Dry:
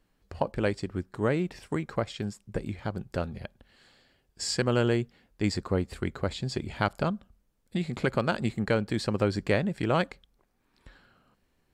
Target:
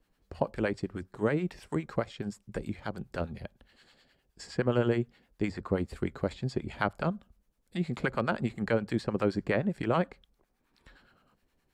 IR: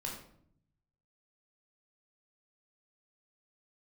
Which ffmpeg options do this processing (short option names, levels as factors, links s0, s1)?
-filter_complex "[0:a]equalizer=f=100:w=7.2:g=-8.5,acrossover=split=540|2500[s0][s1][s2];[s2]acompressor=threshold=0.00355:ratio=6[s3];[s0][s1][s3]amix=inputs=3:normalize=0,acrossover=split=770[s4][s5];[s4]aeval=exprs='val(0)*(1-0.7/2+0.7/2*cos(2*PI*9.6*n/s))':c=same[s6];[s5]aeval=exprs='val(0)*(1-0.7/2-0.7/2*cos(2*PI*9.6*n/s))':c=same[s7];[s6][s7]amix=inputs=2:normalize=0,volume=1.19"